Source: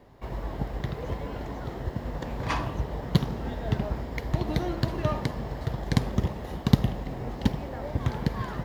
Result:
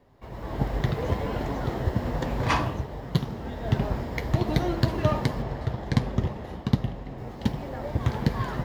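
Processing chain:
0:05.42–0:07.18: high-shelf EQ 6,400 Hz −10 dB
automatic gain control gain up to 12.5 dB
flanger 1.3 Hz, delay 7.1 ms, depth 3.1 ms, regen −57%
level −2 dB

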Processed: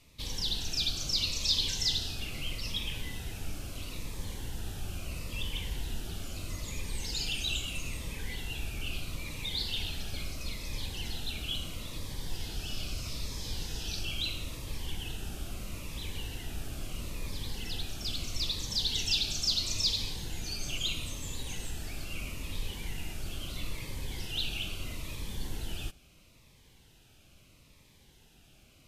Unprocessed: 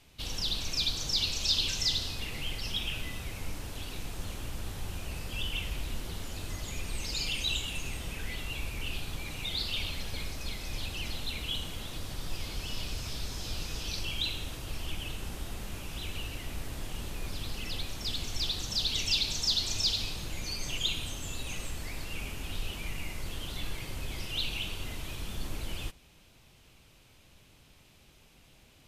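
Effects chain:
phaser whose notches keep moving one way falling 0.76 Hz

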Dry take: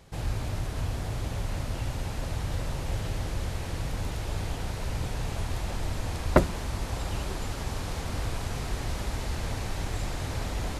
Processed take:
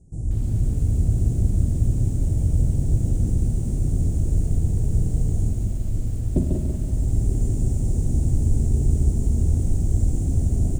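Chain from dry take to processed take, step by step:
elliptic band-stop filter 720–7,200 Hz, stop band 40 dB
in parallel at −10 dB: hard clipping −22 dBFS, distortion −13 dB
on the sum: elliptic low-pass filter 9,400 Hz, stop band 50 dB
low-shelf EQ 450 Hz +8.5 dB
on a send: repeating echo 144 ms, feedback 37%, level −5 dB
on the sum: automatic gain control gain up to 6 dB
flat-topped bell 1,000 Hz −13.5 dB 2.4 octaves
0:05.47–0:05.94: downward compressor 6 to 1, threshold −17 dBFS, peak gain reduction 7 dB
four-comb reverb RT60 1 s, combs from 27 ms, DRR 6 dB
feedback echo at a low word length 188 ms, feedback 35%, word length 7 bits, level −5.5 dB
level −5 dB

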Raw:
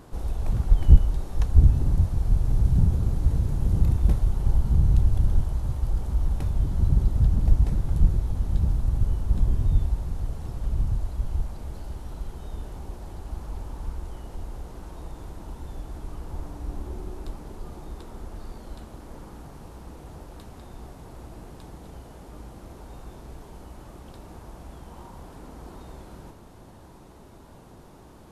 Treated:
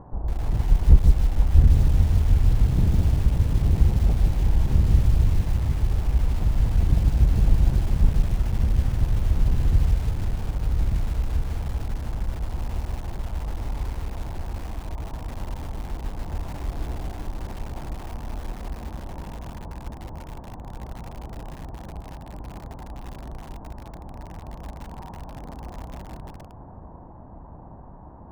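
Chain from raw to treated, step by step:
lower of the sound and its delayed copy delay 1.1 ms
feedback delay with all-pass diffusion 561 ms, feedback 80%, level −13 dB
in parallel at +1 dB: downward compressor 8 to 1, threshold −33 dBFS, peak gain reduction 25.5 dB
on the sum: low-pass filter 1,100 Hz 24 dB per octave
feedback echo at a low word length 153 ms, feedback 35%, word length 6 bits, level −4 dB
level −1 dB

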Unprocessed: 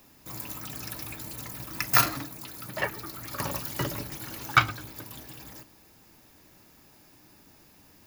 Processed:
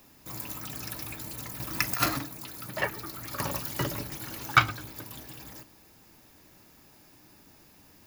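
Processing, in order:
0:01.60–0:02.19: compressor whose output falls as the input rises −24 dBFS, ratio −0.5

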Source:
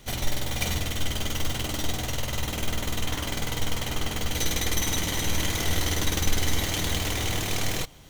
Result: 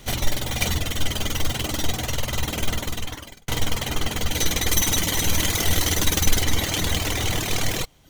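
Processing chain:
0:02.73–0:03.48: fade out
0:04.68–0:06.43: high-shelf EQ 6,300 Hz +5.5 dB
reverb reduction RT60 0.69 s
level +5.5 dB

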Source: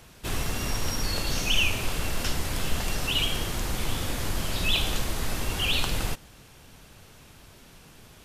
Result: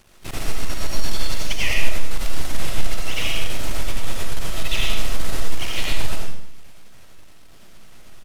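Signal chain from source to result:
pitch-shifted copies added −5 semitones −6 dB, −4 semitones −5 dB, +3 semitones −15 dB
half-wave rectification
comb and all-pass reverb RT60 0.71 s, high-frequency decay 0.95×, pre-delay 45 ms, DRR −2 dB
level −1.5 dB

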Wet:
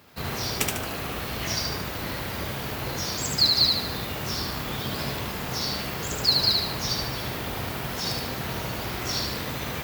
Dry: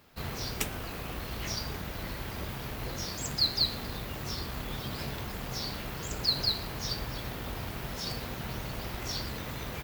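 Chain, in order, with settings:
high-pass filter 70 Hz
on a send: feedback echo with a high-pass in the loop 74 ms, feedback 44%, level −3 dB
on the sum: level +6 dB

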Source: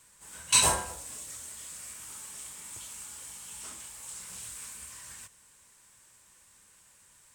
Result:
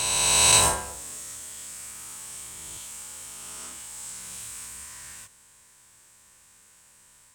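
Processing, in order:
peak hold with a rise ahead of every peak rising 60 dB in 2.80 s

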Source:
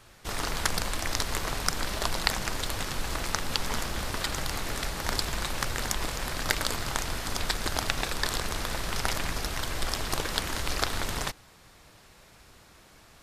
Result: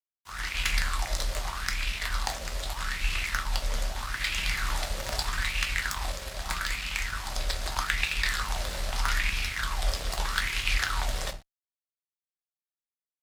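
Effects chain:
wavefolder on the positive side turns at −13.5 dBFS
high-shelf EQ 9,700 Hz −7 dB
rectangular room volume 130 cubic metres, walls furnished, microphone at 0.99 metres
frequency shifter +29 Hz
dead-zone distortion −38 dBFS
automatic gain control gain up to 11 dB
guitar amp tone stack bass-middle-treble 5-5-5
auto-filter bell 0.8 Hz 520–2,600 Hz +16 dB
level −2 dB

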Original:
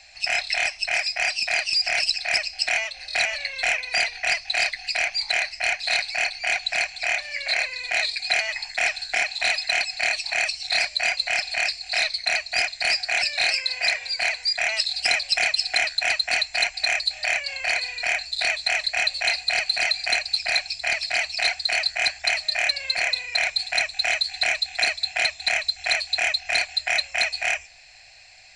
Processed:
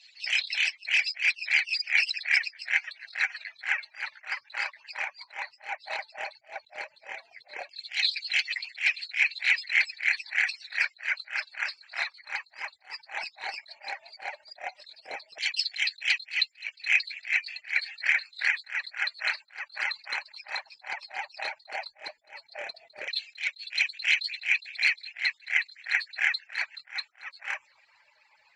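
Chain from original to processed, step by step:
harmonic-percussive split with one part muted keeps percussive
auto-filter band-pass saw down 0.13 Hz 510–3,600 Hz
level that may rise only so fast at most 240 dB per second
level +6.5 dB

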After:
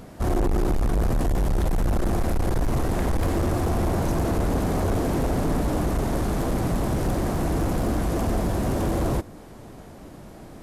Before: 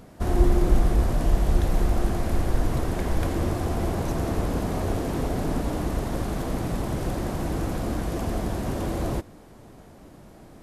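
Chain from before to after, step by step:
gain into a clipping stage and back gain 24 dB
dynamic equaliser 3,100 Hz, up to −3 dB, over −53 dBFS, Q 0.76
level +5 dB

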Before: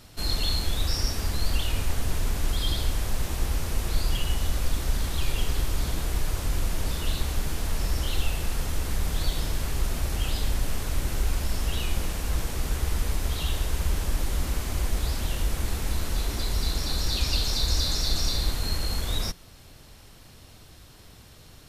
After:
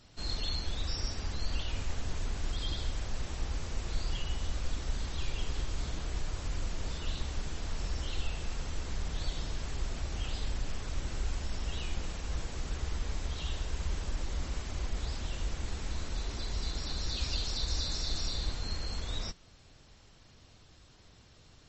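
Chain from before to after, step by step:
level −8 dB
MP3 32 kbit/s 32,000 Hz

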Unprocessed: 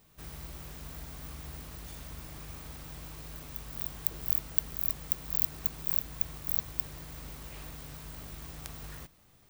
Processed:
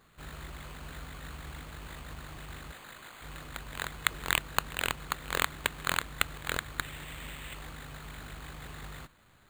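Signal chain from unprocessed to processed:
0:02.71–0:03.21: high-pass filter 510 Hz → 1,300 Hz 6 dB per octave
0:06.83–0:07.54: flat-topped bell 2,300 Hz +12 dB 1 octave
bad sample-rate conversion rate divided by 8×, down none, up hold

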